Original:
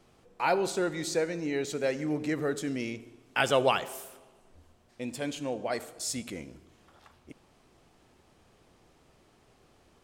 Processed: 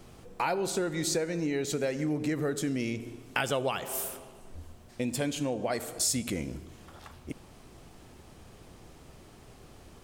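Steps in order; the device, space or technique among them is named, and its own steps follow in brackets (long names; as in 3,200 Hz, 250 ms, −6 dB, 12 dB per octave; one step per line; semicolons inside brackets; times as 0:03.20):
ASMR close-microphone chain (low-shelf EQ 210 Hz +7.5 dB; downward compressor 5 to 1, threshold −35 dBFS, peak gain reduction 15 dB; high-shelf EQ 8,500 Hz +8 dB)
level +7 dB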